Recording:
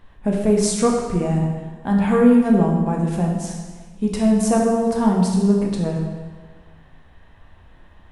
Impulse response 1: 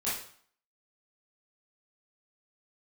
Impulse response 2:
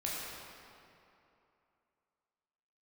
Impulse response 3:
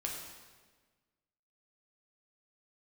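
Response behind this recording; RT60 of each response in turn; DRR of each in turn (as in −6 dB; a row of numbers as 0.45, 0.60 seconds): 3; 0.55, 2.8, 1.4 seconds; −10.5, −6.0, −1.5 decibels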